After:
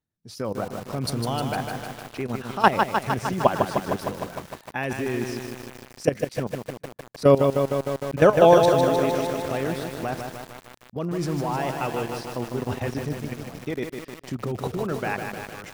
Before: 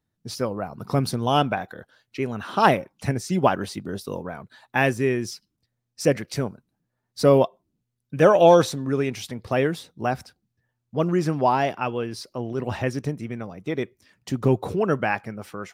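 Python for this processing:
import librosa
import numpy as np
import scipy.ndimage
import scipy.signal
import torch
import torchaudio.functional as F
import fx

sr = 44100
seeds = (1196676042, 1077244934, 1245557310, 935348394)

y = fx.level_steps(x, sr, step_db=15)
y = fx.echo_feedback(y, sr, ms=145, feedback_pct=45, wet_db=-23.5)
y = fx.echo_crushed(y, sr, ms=153, feedback_pct=80, bits=7, wet_db=-5)
y = F.gain(torch.from_numpy(y), 2.5).numpy()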